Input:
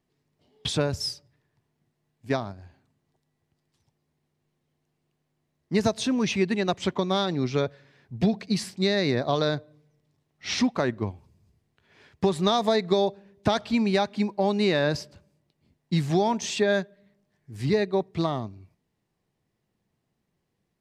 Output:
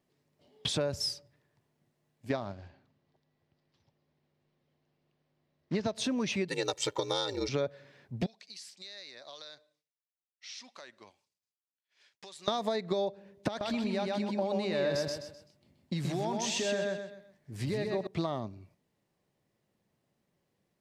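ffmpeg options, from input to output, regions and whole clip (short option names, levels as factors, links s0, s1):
-filter_complex "[0:a]asettb=1/sr,asplit=3[s0][s1][s2];[s0]atrim=end=2.304[s3];[s1]atrim=start=2.3:end=5.95,asetpts=PTS-STARTPTS,afade=t=in:d=0.004:c=qsin,afade=t=out:st=3.646:d=0.004:c=qsin,lowshelf=f=100:g=2,acrusher=bits=5:mode=log:mix=0:aa=0.000001,lowpass=f=5200:w=0.5412,lowpass=f=5200:w=1.3066[s4];[s2]atrim=start=5.946[s5];[s3][s4]acrossfade=d=0.004:c1=hsin:c2=qsin[s6];[s6][s5]acrossfade=d=0.004:c1=qsin:c2=hsin,asettb=1/sr,asplit=3[s7][s8][s9];[s7]atrim=end=6.484[s10];[s8]atrim=start=6.48:end=7.49,asetpts=PTS-STARTPTS,afade=t=in:d=0.004:c=qsin,afade=t=out:st=1.006:d=0.004:c=qsin,bass=f=250:g=-6,treble=f=4000:g=13,aeval=exprs='val(0)*sin(2*PI*56*n/s)':c=same,aecho=1:1:2.2:0.84,atrim=end_sample=44541[s11];[s9]atrim=start=7.486[s12];[s10][s11]acrossfade=d=0.004:c1=hsin:c2=qsin[s13];[s13][s12]acrossfade=d=0.004:c1=qsin:c2=hsin,asettb=1/sr,asplit=3[s14][s15][s16];[s14]atrim=end=8.264[s17];[s15]atrim=start=8.26:end=12.48,asetpts=PTS-STARTPTS,afade=t=in:d=0.004:c=qsin,afade=t=out:st=4.216:d=0.004:c=qsin,agate=range=0.0224:threshold=0.002:ratio=3:release=100:detection=peak,bandpass=f=5900:t=q:w=0.86,acompressor=threshold=0.00447:ratio=3:attack=3.2:release=140:knee=1:detection=peak[s18];[s16]atrim=start=12.476[s19];[s17][s18]acrossfade=d=0.004:c1=hsin:c2=qsin[s20];[s20][s19]acrossfade=d=0.004:c1=qsin:c2=hsin,asettb=1/sr,asplit=3[s21][s22][s23];[s21]atrim=end=13.484[s24];[s22]atrim=start=13.48:end=18.07,asetpts=PTS-STARTPTS,afade=t=in:d=0.004:c=qsin,afade=t=out:st=4.586:d=0.004:c=qsin,acompressor=threshold=0.0447:ratio=5:attack=3.2:release=140:knee=1:detection=peak,aecho=1:1:128|256|384|512:0.708|0.234|0.0771|0.0254,atrim=end_sample=202419[s25];[s23]atrim=start=18.066[s26];[s24][s25]acrossfade=d=0.004:c1=hsin:c2=qsin[s27];[s27][s26]acrossfade=d=0.004:c1=qsin:c2=hsin,lowshelf=f=72:g=-10.5,acompressor=threshold=0.0355:ratio=6,equalizer=f=570:w=7.1:g=7"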